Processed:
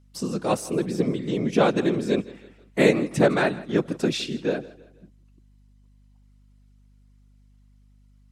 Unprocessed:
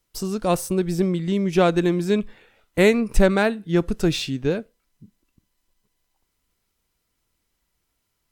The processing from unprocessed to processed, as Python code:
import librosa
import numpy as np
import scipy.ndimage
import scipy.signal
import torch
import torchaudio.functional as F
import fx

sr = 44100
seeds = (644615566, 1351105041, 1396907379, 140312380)

p1 = fx.whisperise(x, sr, seeds[0])
p2 = scipy.signal.sosfilt(scipy.signal.butter(4, 140.0, 'highpass', fs=sr, output='sos'), p1)
p3 = fx.add_hum(p2, sr, base_hz=50, snr_db=30)
p4 = scipy.signal.sosfilt(scipy.signal.butter(2, 9600.0, 'lowpass', fs=sr, output='sos'), p3)
p5 = p4 + fx.echo_feedback(p4, sr, ms=162, feedback_pct=41, wet_db=-19.5, dry=0)
y = p5 * 10.0 ** (-2.0 / 20.0)